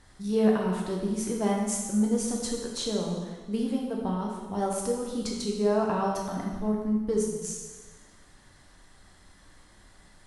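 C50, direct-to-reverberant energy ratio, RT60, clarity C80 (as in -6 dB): 2.0 dB, -1.5 dB, 1.3 s, 4.0 dB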